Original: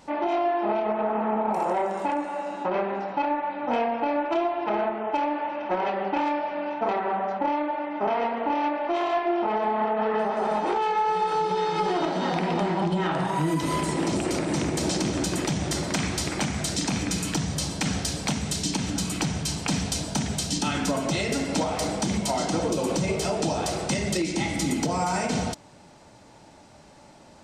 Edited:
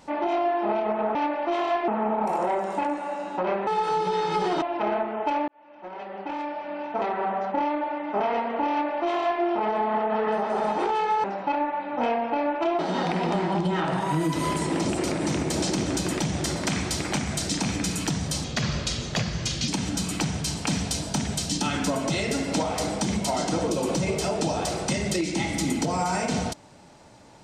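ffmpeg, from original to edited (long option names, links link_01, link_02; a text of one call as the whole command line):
ffmpeg -i in.wav -filter_complex "[0:a]asplit=10[link_01][link_02][link_03][link_04][link_05][link_06][link_07][link_08][link_09][link_10];[link_01]atrim=end=1.152[link_11];[link_02]atrim=start=8.568:end=9.302[link_12];[link_03]atrim=start=1.148:end=2.942[link_13];[link_04]atrim=start=11.108:end=12.062[link_14];[link_05]atrim=start=4.488:end=5.35,asetpts=PTS-STARTPTS,afade=type=out:start_time=0.858:duration=0.004:curve=hsin[link_15];[link_06]atrim=start=5.35:end=11.112,asetpts=PTS-STARTPTS,afade=type=in:duration=1.83[link_16];[link_07]atrim=start=2.938:end=4.492[link_17];[link_08]atrim=start=12.058:end=17.714[link_18];[link_09]atrim=start=17.71:end=18.69,asetpts=PTS-STARTPTS,asetrate=34839,aresample=44100,atrim=end_sample=54706,asetpts=PTS-STARTPTS[link_19];[link_10]atrim=start=18.686[link_20];[link_11][link_12]acrossfade=duration=0.004:curve1=hsin:curve2=hsin[link_21];[link_21][link_13]acrossfade=duration=0.004:curve1=hsin:curve2=hsin[link_22];[link_22][link_14]acrossfade=duration=0.004:curve1=hsin:curve2=hsin[link_23];[link_15][link_16]concat=n=2:v=0:a=1[link_24];[link_23][link_24]acrossfade=duration=0.004:curve1=hsin:curve2=hsin[link_25];[link_25][link_17]acrossfade=duration=0.004:curve1=hsin:curve2=hsin[link_26];[link_26][link_18]acrossfade=duration=0.004:curve1=hsin:curve2=hsin[link_27];[link_27][link_19]acrossfade=duration=0.004:curve1=hsin:curve2=hsin[link_28];[link_28][link_20]acrossfade=duration=0.004:curve1=hsin:curve2=hsin" out.wav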